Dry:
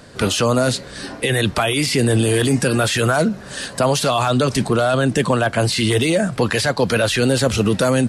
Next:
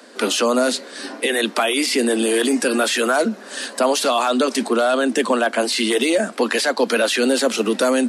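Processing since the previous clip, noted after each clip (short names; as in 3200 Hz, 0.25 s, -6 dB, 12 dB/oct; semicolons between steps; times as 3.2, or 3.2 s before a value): steep high-pass 220 Hz 72 dB/oct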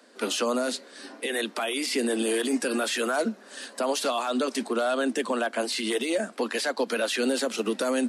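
limiter -10.5 dBFS, peak gain reduction 5 dB; upward expander 1.5:1, over -28 dBFS; gain -5.5 dB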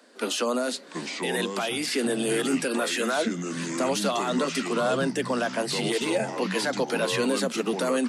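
echoes that change speed 0.658 s, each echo -5 st, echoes 2, each echo -6 dB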